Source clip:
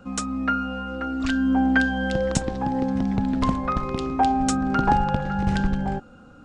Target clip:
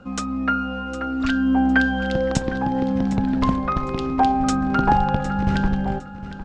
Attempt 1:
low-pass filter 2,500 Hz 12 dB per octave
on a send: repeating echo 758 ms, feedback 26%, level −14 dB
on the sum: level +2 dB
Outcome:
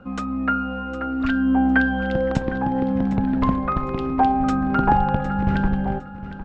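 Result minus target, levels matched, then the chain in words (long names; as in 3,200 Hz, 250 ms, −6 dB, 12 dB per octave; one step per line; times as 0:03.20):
8,000 Hz band −13.5 dB
low-pass filter 5,900 Hz 12 dB per octave
on a send: repeating echo 758 ms, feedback 26%, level −14 dB
on the sum: level +2 dB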